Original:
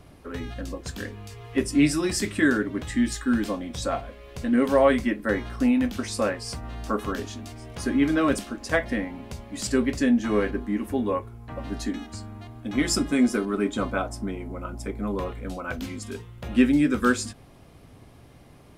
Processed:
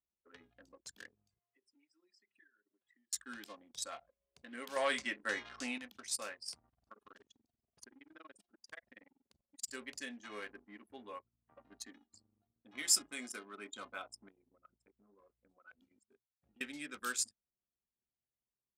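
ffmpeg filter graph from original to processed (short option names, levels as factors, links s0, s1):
-filter_complex "[0:a]asettb=1/sr,asplit=3[s0][s1][s2];[s0]atrim=end=1.394[s3];[s1]atrim=start=1.39:end=3.13,asetpts=PTS-STARTPTS,afade=t=in:d=0.004:c=qsin,afade=t=out:st=1.736:d=0.004:c=qsin,highpass=f=580:p=1,equalizer=f=8800:w=0.97:g=-8,acompressor=threshold=0.01:ratio=5:attack=3.2:release=140:knee=1:detection=peak[s4];[s2]atrim=start=3.126[s5];[s3][s4]acrossfade=d=0.004:c1=hsin:c2=qsin[s6];[s6][s5]acrossfade=d=0.004:c1=qsin:c2=hsin,asettb=1/sr,asplit=3[s7][s8][s9];[s7]atrim=end=4.764[s10];[s8]atrim=start=4.76:end=5.78,asetpts=PTS-STARTPTS,afade=t=in:d=0.004:c=qsin,afade=t=out:st=1.016:d=0.004:c=qsin,lowpass=f=8300:w=0.5412,lowpass=f=8300:w=1.3066,acontrast=88[s11];[s9]atrim=start=5.776[s12];[s10][s11]acrossfade=d=0.004:c1=hsin:c2=qsin[s13];[s13][s12]acrossfade=d=0.004:c1=qsin:c2=hsin,asettb=1/sr,asplit=3[s14][s15][s16];[s14]atrim=end=6.694[s17];[s15]atrim=start=6.69:end=9.68,asetpts=PTS-STARTPTS,afade=t=in:d=0.004:c=qsin,afade=t=out:st=2.986:d=0.004:c=qsin,tremolo=f=21:d=0.857,acompressor=threshold=0.0355:ratio=5:attack=3.2:release=140:knee=1:detection=peak[s18];[s16]atrim=start=9.676[s19];[s17][s18]acrossfade=d=0.004:c1=hsin:c2=qsin[s20];[s20][s19]acrossfade=d=0.004:c1=qsin:c2=hsin,asettb=1/sr,asplit=3[s21][s22][s23];[s21]atrim=end=14.294[s24];[s22]atrim=start=14.29:end=16.61,asetpts=PTS-STARTPTS,afade=t=in:d=0.004:c=qsin,afade=t=out:st=2.316:d=0.004:c=qsin,agate=range=0.0224:threshold=0.0282:ratio=3:release=100:detection=peak,acompressor=threshold=0.0224:ratio=10:attack=3.2:release=140:knee=1:detection=peak[s25];[s23]atrim=start=16.606[s26];[s24][s25]acrossfade=d=0.004:c1=hsin:c2=qsin[s27];[s27][s26]acrossfade=d=0.004:c1=qsin:c2=hsin,anlmdn=15.8,aderivative,volume=0.891"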